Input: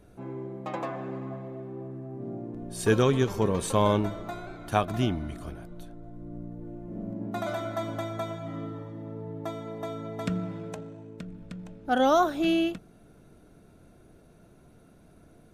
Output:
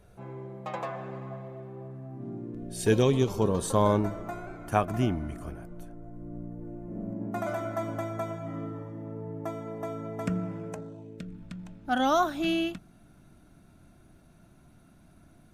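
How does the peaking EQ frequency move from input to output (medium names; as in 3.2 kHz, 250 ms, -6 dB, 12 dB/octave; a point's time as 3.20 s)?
peaking EQ -13.5 dB 0.53 oct
1.91 s 290 Hz
2.69 s 1 kHz
4.21 s 3.8 kHz
10.73 s 3.8 kHz
11.45 s 460 Hz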